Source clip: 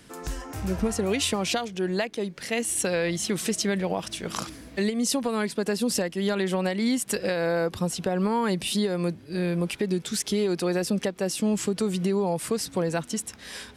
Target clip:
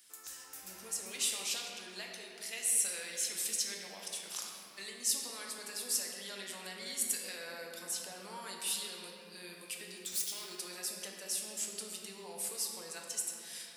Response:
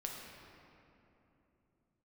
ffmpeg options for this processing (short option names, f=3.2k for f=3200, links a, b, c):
-filter_complex "[0:a]asettb=1/sr,asplit=3[a][b][c];[a]atrim=end=9.974[d];[b]atrim=start=9.97:end=10.45,asetpts=PTS-STARTPTS,afade=t=in:d=0.004:c=qsin,afade=t=out:st=0.476:d=0.004:c=qsin,aeval=exprs='0.0562*(abs(mod(val(0)/0.0562+3,4)-2)-1)':c=same[e];[c]atrim=start=10.446[f];[d][e]acrossfade=d=0.004:c1=hsin:c2=qsin[g];[g][f]acrossfade=d=0.004:c1=qsin:c2=hsin,aderivative[h];[1:a]atrim=start_sample=2205[i];[h][i]afir=irnorm=-1:irlink=0"